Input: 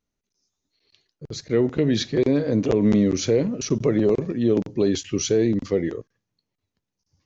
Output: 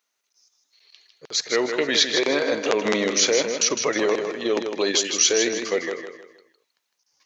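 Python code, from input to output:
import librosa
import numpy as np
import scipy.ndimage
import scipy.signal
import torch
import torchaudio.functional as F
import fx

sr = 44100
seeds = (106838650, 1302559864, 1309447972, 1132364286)

p1 = scipy.signal.sosfilt(scipy.signal.butter(2, 920.0, 'highpass', fs=sr, output='sos'), x)
p2 = fx.level_steps(p1, sr, step_db=19)
p3 = p1 + (p2 * librosa.db_to_amplitude(2.5))
p4 = fx.echo_feedback(p3, sr, ms=157, feedback_pct=36, wet_db=-7.0)
y = p4 * librosa.db_to_amplitude(7.0)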